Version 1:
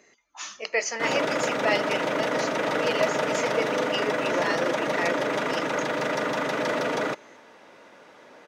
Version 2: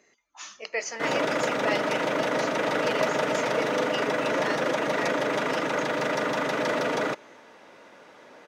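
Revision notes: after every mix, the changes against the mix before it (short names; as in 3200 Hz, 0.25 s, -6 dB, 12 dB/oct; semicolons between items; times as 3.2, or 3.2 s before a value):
speech -4.5 dB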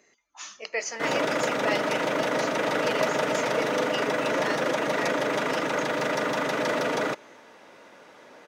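master: add high shelf 8200 Hz +5 dB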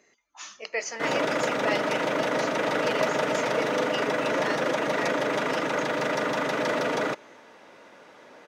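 master: add high shelf 8200 Hz -5 dB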